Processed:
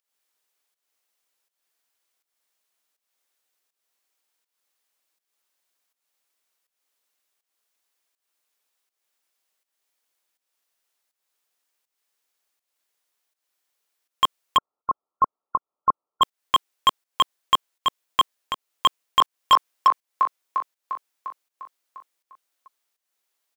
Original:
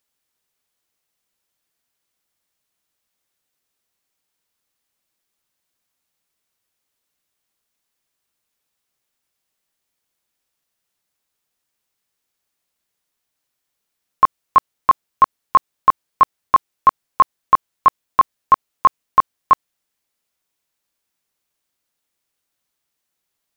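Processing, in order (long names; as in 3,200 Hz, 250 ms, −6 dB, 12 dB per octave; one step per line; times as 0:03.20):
high-pass filter 400 Hz 12 dB per octave
0:18.86–0:19.52: delay throw 350 ms, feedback 60%, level −3 dB
wave folding −8 dBFS
fake sidechain pumping 81 BPM, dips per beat 1, −13 dB, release 275 ms
0:14.57–0:16.22: linear-phase brick-wall low-pass 1,400 Hz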